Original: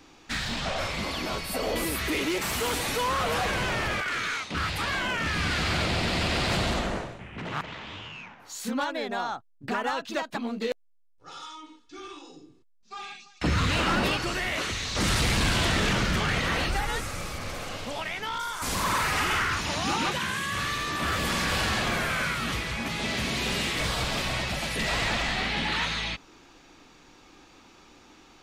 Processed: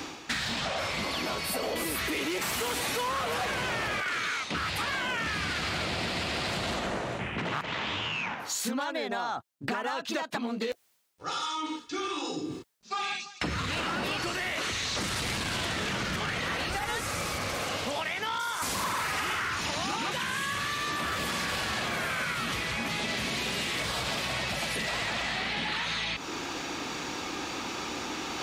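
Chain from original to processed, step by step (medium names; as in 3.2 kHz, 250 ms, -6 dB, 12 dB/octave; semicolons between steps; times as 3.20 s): high-pass 69 Hz; bass shelf 250 Hz -4.5 dB; reverse; upward compressor, threshold -31 dBFS; reverse; peak limiter -22 dBFS, peak gain reduction 7.5 dB; compression 6:1, threshold -37 dBFS, peak gain reduction 10 dB; trim +8 dB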